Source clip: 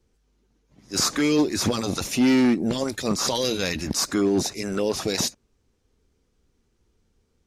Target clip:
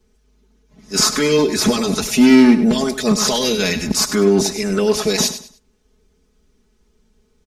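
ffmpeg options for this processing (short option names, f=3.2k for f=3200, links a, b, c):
-filter_complex "[0:a]aecho=1:1:4.7:0.93,asplit=2[a][b];[b]aecho=0:1:100|200|300:0.251|0.0678|0.0183[c];[a][c]amix=inputs=2:normalize=0,volume=4.5dB"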